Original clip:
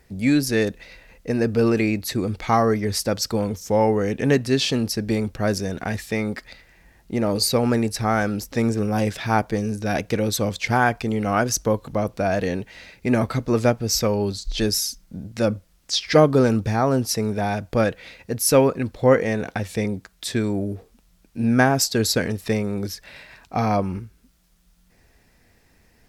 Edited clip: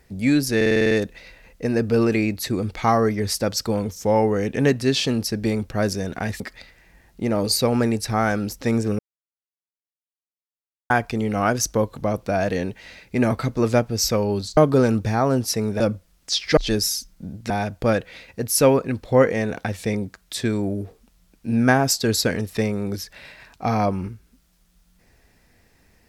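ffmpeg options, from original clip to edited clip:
-filter_complex "[0:a]asplit=15[a][b][c][d][e][f][g][h][i][j][k][l][m][n][o];[a]atrim=end=0.612[p];[b]atrim=start=0.558:end=0.612[q];[c]atrim=start=0.558:end=0.612[r];[d]atrim=start=0.558:end=0.612[s];[e]atrim=start=0.558:end=0.612[t];[f]atrim=start=0.558:end=0.612[u];[g]atrim=start=0.558:end=0.612[v];[h]atrim=start=0.558:end=6.052[w];[i]atrim=start=6.308:end=8.9,asetpts=PTS-STARTPTS,afade=t=out:st=2.588:d=0.004:c=hsin[x];[j]atrim=start=8.9:end=10.81,asetpts=PTS-STARTPTS,volume=0[y];[k]atrim=start=10.81:end=14.482,asetpts=PTS-STARTPTS,afade=t=in:d=0.004:c=hsin[z];[l]atrim=start=16.178:end=17.412[aa];[m]atrim=start=15.408:end=16.182[ab];[n]atrim=start=14.478:end=15.412[ac];[o]atrim=start=17.408[ad];[p][q]acrossfade=d=0.004:c1=hsin:c2=hsin[ae];[ae][r]acrossfade=d=0.004:c1=hsin:c2=hsin[af];[af][s]acrossfade=d=0.004:c1=hsin:c2=hsin[ag];[ag][t]acrossfade=d=0.004:c1=hsin:c2=hsin[ah];[ah][u]acrossfade=d=0.004:c1=hsin:c2=hsin[ai];[ai][v]acrossfade=d=0.004:c1=hsin:c2=hsin[aj];[aj][w]acrossfade=d=0.004:c1=hsin:c2=hsin[ak];[x][y][z]concat=n=3:v=0:a=1[al];[ak][al]acrossfade=d=0.004:c1=hsin:c2=hsin[am];[am][aa]acrossfade=d=0.004:c1=hsin:c2=hsin[an];[an][ab]acrossfade=d=0.004:c1=hsin:c2=hsin[ao];[ao][ac]acrossfade=d=0.004:c1=hsin:c2=hsin[ap];[ap][ad]acrossfade=d=0.004:c1=hsin:c2=hsin"

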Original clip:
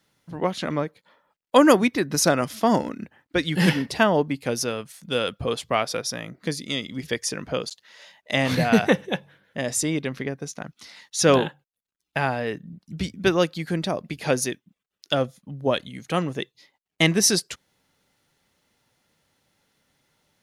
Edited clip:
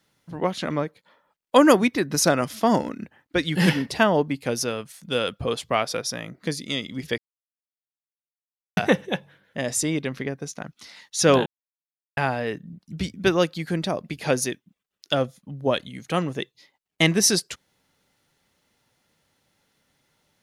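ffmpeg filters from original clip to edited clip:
-filter_complex "[0:a]asplit=5[a][b][c][d][e];[a]atrim=end=7.18,asetpts=PTS-STARTPTS,afade=t=out:st=7.176:d=0.004:c=hsin[f];[b]atrim=start=7.18:end=8.77,asetpts=PTS-STARTPTS,volume=0[g];[c]atrim=start=8.77:end=11.46,asetpts=PTS-STARTPTS,afade=t=in:d=0.004:c=hsin,afade=t=out:st=2.686:d=0.004:c=hsin[h];[d]atrim=start=11.46:end=12.17,asetpts=PTS-STARTPTS,volume=0[i];[e]atrim=start=12.17,asetpts=PTS-STARTPTS,afade=t=in:d=0.004:c=hsin[j];[f][g][h][i][j]concat=n=5:v=0:a=1"

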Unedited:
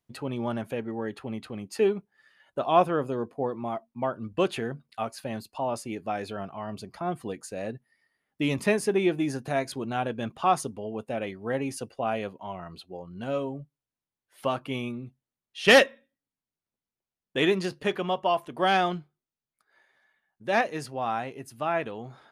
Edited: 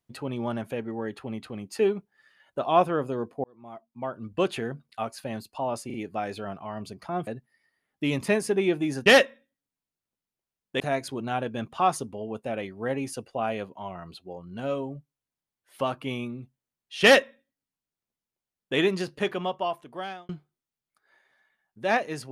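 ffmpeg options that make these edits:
-filter_complex "[0:a]asplit=8[a][b][c][d][e][f][g][h];[a]atrim=end=3.44,asetpts=PTS-STARTPTS,afade=t=out:st=3.436:d=0.004:c=hsin[i];[b]atrim=start=3.44:end=5.902,asetpts=PTS-STARTPTS,afade=t=in:d=0.99[j];[c]atrim=start=5.858:end=5.902[k];[d]atrim=start=5.858:end=7.192[l];[e]atrim=start=7.648:end=9.442[m];[f]atrim=start=15.668:end=17.412[n];[g]atrim=start=9.438:end=18.93,asetpts=PTS-STARTPTS,afade=t=out:st=8.502:d=0.99[o];[h]atrim=start=18.93,asetpts=PTS-STARTPTS,afade=t=in:d=0.004:c=hsin[p];[i][j]concat=n=2:v=0:a=1[q];[q][k]acrossfade=d=0.004:c1=hsin:c2=hsin[r];[r][l]acrossfade=d=0.004:c1=hsin:c2=hsin[s];[s][m]acrossfade=d=0.004:c1=hsin:c2=hsin[t];[t][n]acrossfade=d=0.004:c1=hsin:c2=hsin[u];[o][p]concat=n=2:v=0:a=1[v];[u][v]acrossfade=d=0.004:c1=hsin:c2=hsin"

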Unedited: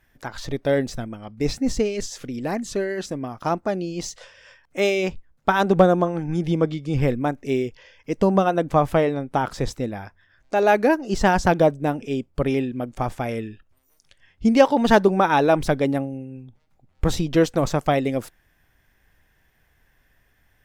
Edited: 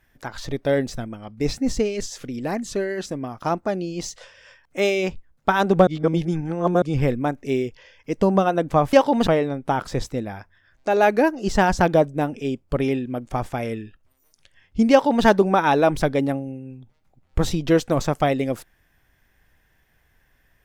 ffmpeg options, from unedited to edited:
-filter_complex "[0:a]asplit=5[a][b][c][d][e];[a]atrim=end=5.872[f];[b]atrim=start=5.868:end=6.822,asetpts=PTS-STARTPTS,areverse[g];[c]atrim=start=6.818:end=8.932[h];[d]atrim=start=14.568:end=14.912[i];[e]atrim=start=8.928[j];[f][g]acrossfade=d=0.004:c1=hsin:c2=hsin[k];[k][h]acrossfade=d=0.004:c1=hsin:c2=hsin[l];[l][i]acrossfade=d=0.004:c1=hsin:c2=hsin[m];[m][j]acrossfade=d=0.004:c1=hsin:c2=hsin"

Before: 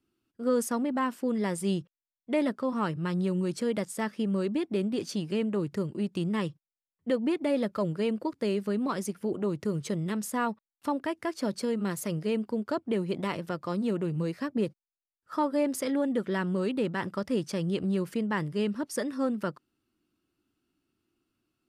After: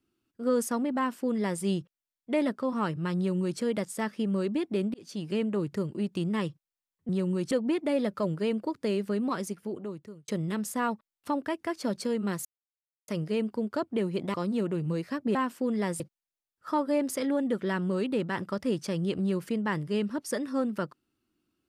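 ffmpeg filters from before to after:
-filter_complex "[0:a]asplit=9[a][b][c][d][e][f][g][h][i];[a]atrim=end=4.94,asetpts=PTS-STARTPTS,afade=t=out:st=4.936:d=0.004:c=hsin[j];[b]atrim=start=4.94:end=7.092,asetpts=PTS-STARTPTS,afade=t=in:d=0.37[k];[c]atrim=start=3.168:end=3.592[l];[d]atrim=start=7.088:end=9.86,asetpts=PTS-STARTPTS,afade=t=out:st=1.802:d=0.97[m];[e]atrim=start=9.86:end=12.03,asetpts=PTS-STARTPTS,afade=t=in:d=0.004:c=hsin,afade=t=out:st=2.166:d=0.004:c=hsin,apad=pad_dur=0.63[n];[f]atrim=start=12.03:end=13.292,asetpts=PTS-STARTPTS,afade=t=in:d=0.004:c=hsin[o];[g]atrim=start=13.638:end=14.652[p];[h]atrim=start=0.968:end=1.622[q];[i]atrim=start=14.648[r];[j][k]concat=n=2:v=0:a=1[s];[s][l]acrossfade=d=0.004:c1=hsin:c2=hsin[t];[m][n][o]concat=n=3:v=0:a=1[u];[t][u]acrossfade=d=0.004:c1=hsin:c2=hsin[v];[v][p]acrossfade=d=0.004:c1=hsin:c2=hsin[w];[w][q]acrossfade=d=0.004:c1=hsin:c2=hsin[x];[x][r]acrossfade=d=0.004:c1=hsin:c2=hsin"

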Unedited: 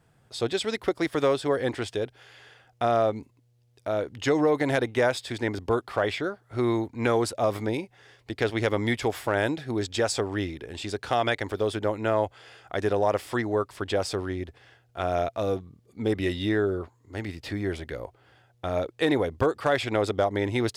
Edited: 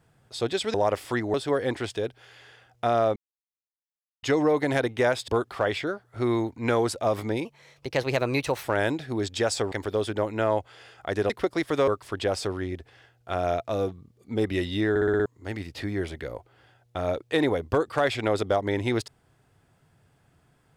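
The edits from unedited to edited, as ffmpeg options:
-filter_complex "[0:a]asplit=17[a][b][c][d][e][f][g][h][i][j][k][l][m][n][o][p][q];[a]atrim=end=0.742[r];[b]atrim=start=12.958:end=13.562[s];[c]atrim=start=1.318:end=3.14,asetpts=PTS-STARTPTS,afade=t=out:st=1.818:d=0.004:c=hsin[t];[d]atrim=start=3.14:end=4.21,asetpts=PTS-STARTPTS,volume=0[u];[e]atrim=start=4.21:end=5.262,asetpts=PTS-STARTPTS,afade=t=in:d=0.004:c=hsin[v];[f]atrim=start=5.648:end=7.824[w];[g]atrim=start=7.82:end=9.22,asetpts=PTS-STARTPTS,asetrate=52038,aresample=44100,atrim=end_sample=52322,asetpts=PTS-STARTPTS[x];[h]atrim=start=9.216:end=10.302[y];[i]atrim=start=11.378:end=12.962[z];[j]atrim=start=0.738:end=1.322[aa];[k]atrim=start=13.558:end=16.642[ab];[l]atrim=start=16.578:end=16.642[ac];[m]atrim=start=16.578:end=16.642[ad];[n]atrim=start=16.578:end=16.642[ae];[o]atrim=start=16.578:end=16.642[af];[p]atrim=start=16.578:end=16.642[ag];[q]atrim=start=16.938[ah];[r][s]acrossfade=d=0.004:c1=hsin:c2=hsin[ai];[t][u][v]concat=n=3:v=0:a=1[aj];[ai][aj]acrossfade=d=0.004:c1=hsin:c2=hsin[ak];[ak][w]acrossfade=d=0.004:c1=hsin:c2=hsin[al];[al][x]acrossfade=d=0.004:c1=hsin:c2=hsin[am];[am][y]acrossfade=d=0.004:c1=hsin:c2=hsin[an];[an][z]acrossfade=d=0.004:c1=hsin:c2=hsin[ao];[ao][aa]acrossfade=d=0.004:c1=hsin:c2=hsin[ap];[ap][ab]acrossfade=d=0.004:c1=hsin:c2=hsin[aq];[aq][ac]acrossfade=d=0.004:c1=hsin:c2=hsin[ar];[ar][ad]acrossfade=d=0.004:c1=hsin:c2=hsin[as];[as][ae]acrossfade=d=0.004:c1=hsin:c2=hsin[at];[at][af]acrossfade=d=0.004:c1=hsin:c2=hsin[au];[au][ag]acrossfade=d=0.004:c1=hsin:c2=hsin[av];[av][ah]acrossfade=d=0.004:c1=hsin:c2=hsin"

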